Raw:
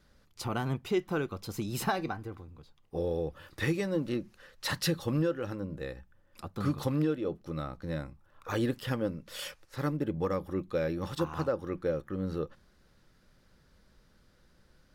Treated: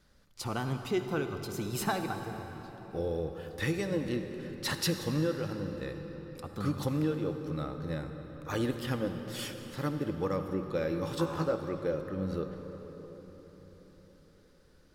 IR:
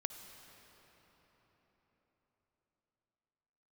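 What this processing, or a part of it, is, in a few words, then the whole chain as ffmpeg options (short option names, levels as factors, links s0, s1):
cathedral: -filter_complex "[1:a]atrim=start_sample=2205[s0];[0:a][s0]afir=irnorm=-1:irlink=0,equalizer=f=8300:w=0.52:g=3,asettb=1/sr,asplit=3[s1][s2][s3];[s1]atrim=end=10.904[s4];[s2]atrim=start=10.9:end=11.56,asetpts=PTS-STARTPTS,afade=t=in:d=0.004:c=qsin,afade=t=out:st=0.656:d=0.004:c=qsin,asplit=2[s5][s6];[s6]adelay=18,volume=0.501[s7];[s5][s7]amix=inputs=2:normalize=0,atrim=end_sample=29106[s8];[s3]atrim=start=11.556[s9];[s4][s8]acrossfade=d=0.004:c1=hsin:c2=qsin[s10];[s10][s9]acrossfade=d=0.004:c1=qsin:c2=hsin"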